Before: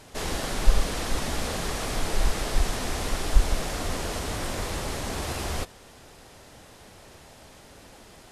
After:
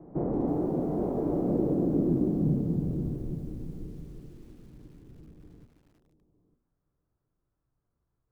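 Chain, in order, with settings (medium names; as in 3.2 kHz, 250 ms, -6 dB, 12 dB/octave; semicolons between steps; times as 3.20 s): dynamic bell 830 Hz, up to +6 dB, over -46 dBFS, Q 0.95; in parallel at -2 dB: compression 12:1, threshold -32 dBFS, peak gain reduction 23.5 dB; on the sum: low-pass sweep 1.3 kHz -> 200 Hz, 1.27–4.49 s; formant shift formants -5 st; band-pass sweep 540 Hz -> 1.6 kHz, 5.78–6.57 s; thinning echo 907 ms, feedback 17%, high-pass 950 Hz, level -9.5 dB; on a send at -8 dB: reverberation, pre-delay 3 ms; on the sum: mistuned SSB -280 Hz 210–2700 Hz; bit-crushed delay 330 ms, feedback 55%, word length 9-bit, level -13 dB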